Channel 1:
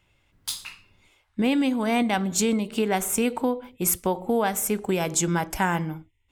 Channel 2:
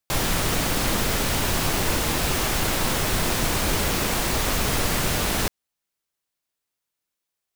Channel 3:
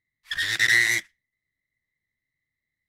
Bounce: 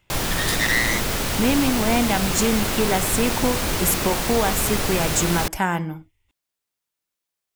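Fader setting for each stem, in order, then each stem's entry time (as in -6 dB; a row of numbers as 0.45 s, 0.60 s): +1.5 dB, -0.5 dB, -2.5 dB; 0.00 s, 0.00 s, 0.00 s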